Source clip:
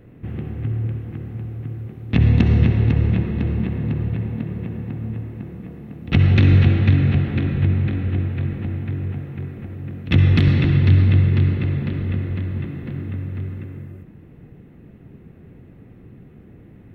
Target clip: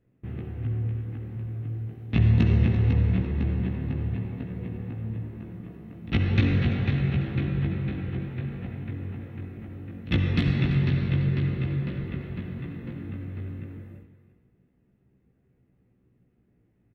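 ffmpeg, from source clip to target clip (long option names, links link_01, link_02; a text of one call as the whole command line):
ffmpeg -i in.wav -af "agate=range=-16dB:threshold=-37dB:ratio=16:detection=peak,aecho=1:1:339|678|1017:0.211|0.0528|0.0132,flanger=delay=15.5:depth=2.2:speed=0.26,volume=-3dB" out.wav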